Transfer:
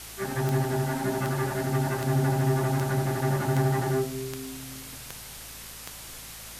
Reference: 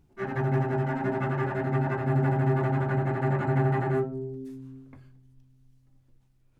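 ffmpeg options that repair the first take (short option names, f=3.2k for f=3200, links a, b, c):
-af "adeclick=t=4,bandreject=f=54.6:t=h:w=4,bandreject=f=109.2:t=h:w=4,bandreject=f=163.8:t=h:w=4,bandreject=f=218.4:t=h:w=4,afwtdn=0.0089,asetnsamples=n=441:p=0,asendcmd='6 volume volume -5.5dB',volume=0dB"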